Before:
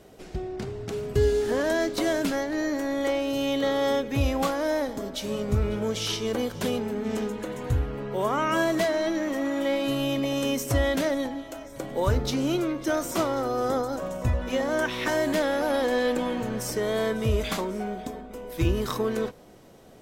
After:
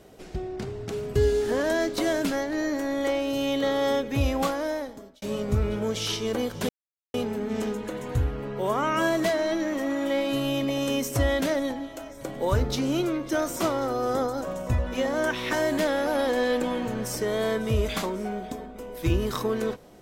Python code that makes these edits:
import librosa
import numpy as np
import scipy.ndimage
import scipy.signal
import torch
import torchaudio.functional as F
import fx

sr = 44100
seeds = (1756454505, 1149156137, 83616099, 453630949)

y = fx.edit(x, sr, fx.fade_out_span(start_s=4.47, length_s=0.75),
    fx.insert_silence(at_s=6.69, length_s=0.45), tone=tone)